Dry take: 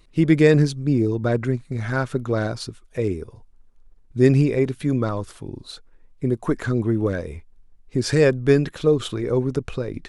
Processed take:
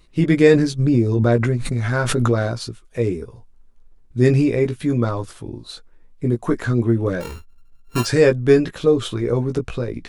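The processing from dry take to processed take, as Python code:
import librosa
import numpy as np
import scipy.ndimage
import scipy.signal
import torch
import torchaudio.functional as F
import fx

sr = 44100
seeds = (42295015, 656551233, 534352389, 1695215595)

y = fx.sample_sort(x, sr, block=32, at=(7.2, 8.04), fade=0.02)
y = fx.doubler(y, sr, ms=17.0, db=-5.0)
y = fx.pre_swell(y, sr, db_per_s=22.0, at=(0.78, 2.39), fade=0.02)
y = y * librosa.db_to_amplitude(1.0)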